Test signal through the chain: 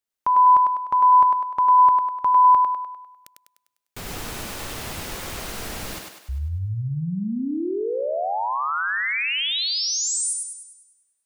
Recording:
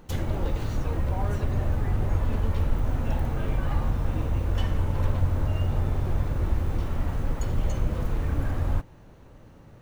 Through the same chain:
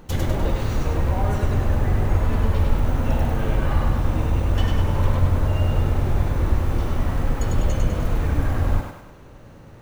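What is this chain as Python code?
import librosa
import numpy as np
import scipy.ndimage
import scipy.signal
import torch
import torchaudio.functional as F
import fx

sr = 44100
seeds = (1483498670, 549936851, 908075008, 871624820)

y = fx.echo_thinned(x, sr, ms=100, feedback_pct=51, hz=280.0, wet_db=-3.0)
y = y * librosa.db_to_amplitude(5.0)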